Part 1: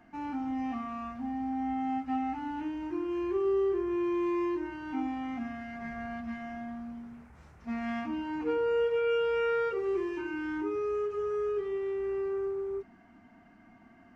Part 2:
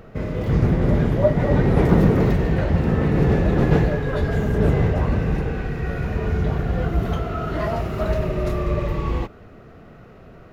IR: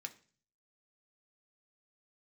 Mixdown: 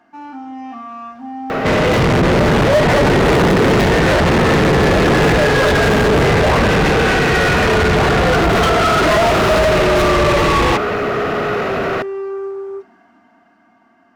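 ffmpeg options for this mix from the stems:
-filter_complex "[0:a]equalizer=f=2.2k:w=1.9:g=-8.5,volume=-18.5dB,asplit=2[a][b];[b]volume=-4.5dB[c];[1:a]asoftclip=type=tanh:threshold=-16.5dB,adelay=1500,volume=1.5dB,asplit=2[d][e];[e]volume=-13.5dB[f];[2:a]atrim=start_sample=2205[g];[c][f]amix=inputs=2:normalize=0[h];[h][g]afir=irnorm=-1:irlink=0[i];[a][d][i]amix=inputs=3:normalize=0,dynaudnorm=f=220:g=13:m=6dB,asplit=2[j][k];[k]highpass=f=720:p=1,volume=33dB,asoftclip=type=tanh:threshold=-7dB[l];[j][l]amix=inputs=2:normalize=0,lowpass=f=4.1k:p=1,volume=-6dB"

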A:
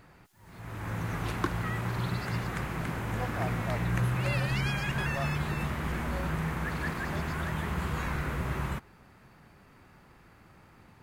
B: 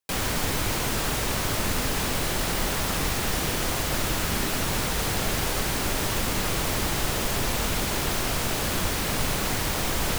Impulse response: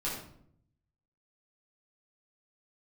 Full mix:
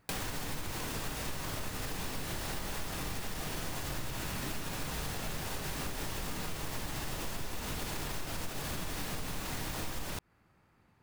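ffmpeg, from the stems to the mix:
-filter_complex "[0:a]volume=-11.5dB[a];[1:a]alimiter=limit=-23dB:level=0:latency=1:release=176,volume=0.5dB,asplit=2[b][c];[c]volume=-9dB[d];[2:a]atrim=start_sample=2205[e];[d][e]afir=irnorm=-1:irlink=0[f];[a][b][f]amix=inputs=3:normalize=0,acompressor=threshold=-34dB:ratio=6"

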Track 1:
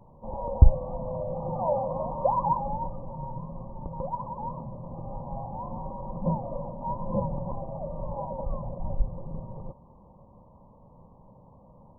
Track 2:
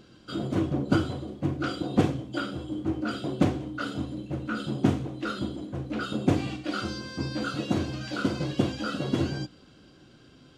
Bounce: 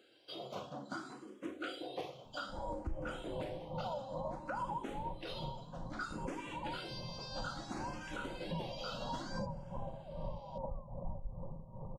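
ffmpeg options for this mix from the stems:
-filter_complex "[0:a]tremolo=f=2.5:d=0.74,adelay=2250,volume=-5dB[a];[1:a]highpass=390,asplit=2[b][c];[c]afreqshift=0.6[d];[b][d]amix=inputs=2:normalize=1,volume=-4.5dB[e];[a][e]amix=inputs=2:normalize=0,equalizer=f=320:w=1.9:g=-3,alimiter=level_in=6.5dB:limit=-24dB:level=0:latency=1:release=223,volume=-6.5dB"

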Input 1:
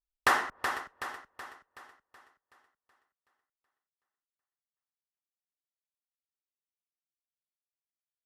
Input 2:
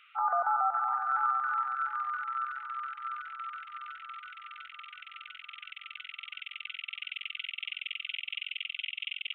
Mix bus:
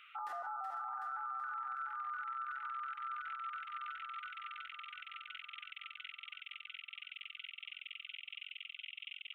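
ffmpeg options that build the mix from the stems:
-filter_complex "[0:a]highpass=f=610:p=1,volume=-15.5dB[a];[1:a]volume=0.5dB[b];[a][b]amix=inputs=2:normalize=0,alimiter=level_in=11dB:limit=-24dB:level=0:latency=1:release=104,volume=-11dB"

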